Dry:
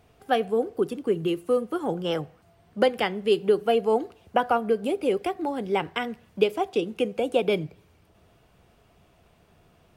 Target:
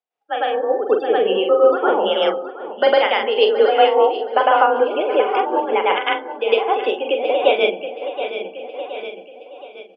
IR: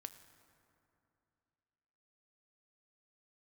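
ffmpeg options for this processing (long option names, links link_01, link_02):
-filter_complex "[0:a]highpass=480,lowpass=6100,asplit=2[link_01][link_02];[1:a]atrim=start_sample=2205,adelay=105[link_03];[link_02][link_03]afir=irnorm=-1:irlink=0,volume=9.5dB[link_04];[link_01][link_04]amix=inputs=2:normalize=0,afftdn=noise_reduction=28:noise_floor=-35,asplit=2[link_05][link_06];[link_06]adelay=43,volume=-6dB[link_07];[link_05][link_07]amix=inputs=2:normalize=0,aecho=1:1:722|1444|2166|2888:0.266|0.0958|0.0345|0.0124,tremolo=f=5.2:d=0.4,afreqshift=35,dynaudnorm=framelen=200:gausssize=7:maxgain=15.5dB,volume=-1dB"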